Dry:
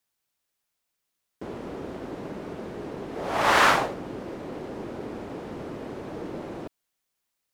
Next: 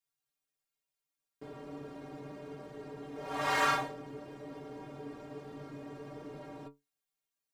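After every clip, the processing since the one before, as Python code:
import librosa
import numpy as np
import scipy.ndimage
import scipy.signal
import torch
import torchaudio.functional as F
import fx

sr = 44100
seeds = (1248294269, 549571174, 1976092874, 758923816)

y = fx.stiff_resonator(x, sr, f0_hz=140.0, decay_s=0.22, stiffness=0.008)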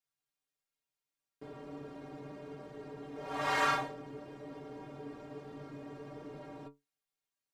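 y = fx.high_shelf(x, sr, hz=9000.0, db=-6.5)
y = y * 10.0 ** (-1.0 / 20.0)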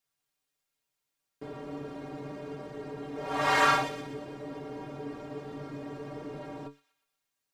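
y = fx.echo_wet_highpass(x, sr, ms=121, feedback_pct=49, hz=2500.0, wet_db=-10.0)
y = y * 10.0 ** (6.5 / 20.0)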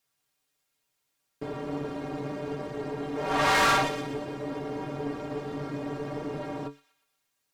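y = fx.tube_stage(x, sr, drive_db=28.0, bias=0.6)
y = y * 10.0 ** (9.0 / 20.0)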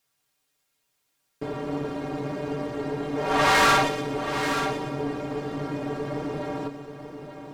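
y = x + 10.0 ** (-9.0 / 20.0) * np.pad(x, (int(882 * sr / 1000.0), 0))[:len(x)]
y = y * 10.0 ** (3.5 / 20.0)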